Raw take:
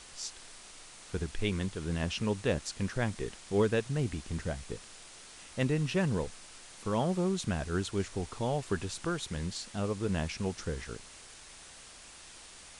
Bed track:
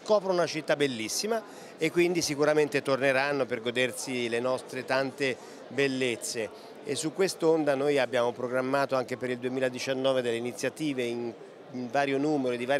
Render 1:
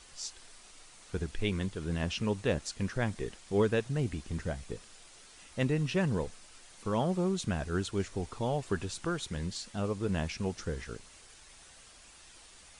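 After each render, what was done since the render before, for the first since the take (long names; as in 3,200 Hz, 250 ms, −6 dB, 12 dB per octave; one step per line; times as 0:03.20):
broadband denoise 6 dB, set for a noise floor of −52 dBFS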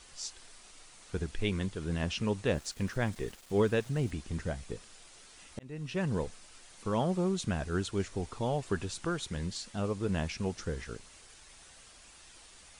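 0:02.54–0:04.11: centre clipping without the shift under −51 dBFS
0:05.59–0:06.19: fade in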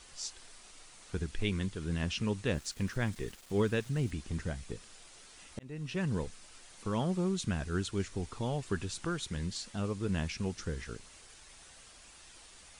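dynamic equaliser 650 Hz, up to −6 dB, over −47 dBFS, Q 1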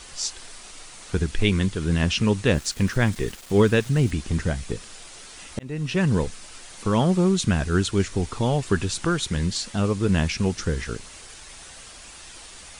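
level +12 dB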